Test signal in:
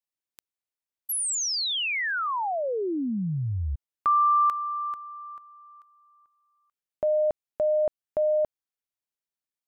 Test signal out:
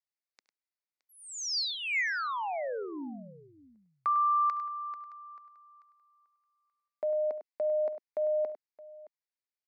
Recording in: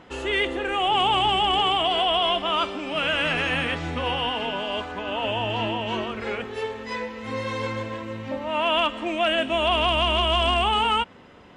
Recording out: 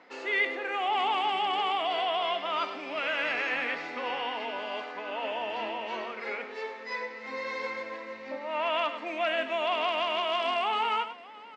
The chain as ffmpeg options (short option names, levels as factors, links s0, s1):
-filter_complex "[0:a]highpass=f=270:w=0.5412,highpass=f=270:w=1.3066,equalizer=f=350:t=q:w=4:g=-7,equalizer=f=2100:t=q:w=4:g=7,equalizer=f=3100:t=q:w=4:g=-8,equalizer=f=4600:t=q:w=4:g=5,lowpass=f=6100:w=0.5412,lowpass=f=6100:w=1.3066,asplit=2[s0][s1];[s1]aecho=0:1:70|101|619:0.106|0.266|0.106[s2];[s0][s2]amix=inputs=2:normalize=0,volume=0.501"